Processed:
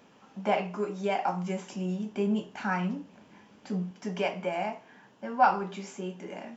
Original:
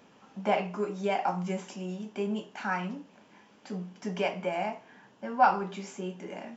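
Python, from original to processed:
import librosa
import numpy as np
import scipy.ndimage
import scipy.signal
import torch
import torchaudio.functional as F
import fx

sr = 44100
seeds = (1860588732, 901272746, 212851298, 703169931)

y = fx.low_shelf(x, sr, hz=200.0, db=10.5, at=(1.72, 3.91))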